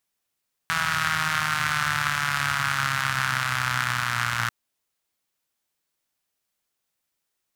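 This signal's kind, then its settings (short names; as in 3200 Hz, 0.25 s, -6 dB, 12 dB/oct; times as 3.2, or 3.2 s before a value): four-cylinder engine model, changing speed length 3.79 s, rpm 4900, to 3500, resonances 120/1400 Hz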